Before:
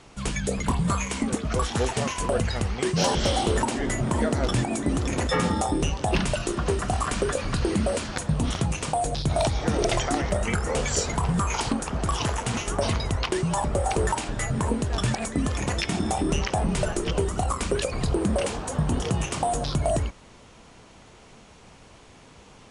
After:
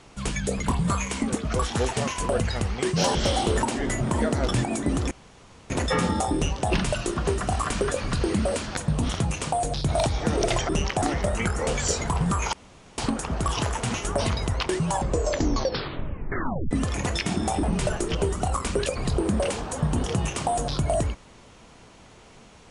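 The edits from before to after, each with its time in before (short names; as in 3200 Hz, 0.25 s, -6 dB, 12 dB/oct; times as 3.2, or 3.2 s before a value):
5.11 insert room tone 0.59 s
11.61 insert room tone 0.45 s
13.53 tape stop 1.81 s
16.26–16.59 move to 10.1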